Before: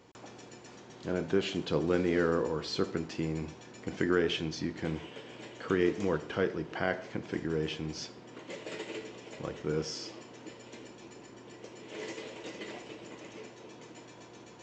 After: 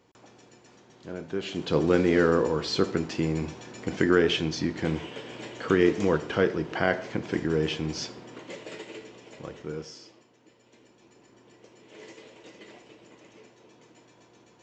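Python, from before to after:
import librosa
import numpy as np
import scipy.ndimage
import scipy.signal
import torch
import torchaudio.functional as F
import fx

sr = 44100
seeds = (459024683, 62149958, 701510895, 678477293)

y = fx.gain(x, sr, db=fx.line((1.3, -4.5), (1.79, 6.5), (8.12, 6.5), (8.89, -1.5), (9.61, -1.5), (10.37, -13.0), (11.36, -6.0)))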